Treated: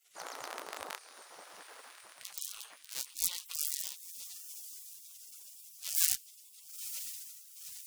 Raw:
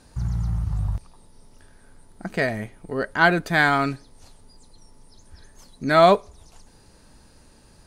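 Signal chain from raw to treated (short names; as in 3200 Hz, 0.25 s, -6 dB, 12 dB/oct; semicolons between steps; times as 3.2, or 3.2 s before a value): cycle switcher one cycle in 3, inverted; diffused feedback echo 0.971 s, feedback 58%, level -10 dB; spectral gate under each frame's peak -30 dB weak; gain +3 dB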